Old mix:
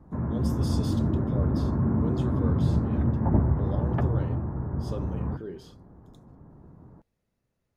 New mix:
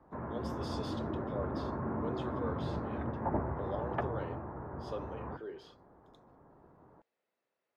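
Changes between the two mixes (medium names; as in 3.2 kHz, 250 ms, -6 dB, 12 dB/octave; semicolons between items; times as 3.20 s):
speech: add high-pass 230 Hz 12 dB/octave; master: add three-band isolator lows -16 dB, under 390 Hz, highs -17 dB, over 4.4 kHz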